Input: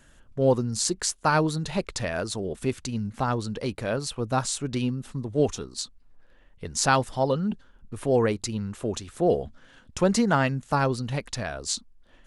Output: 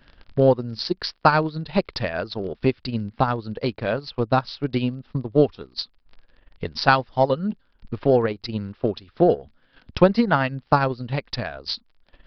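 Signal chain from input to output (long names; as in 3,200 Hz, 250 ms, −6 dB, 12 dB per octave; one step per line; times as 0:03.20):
surface crackle 35 per second −36 dBFS
transient designer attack +8 dB, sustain −10 dB
downsampling to 11,025 Hz
level +1 dB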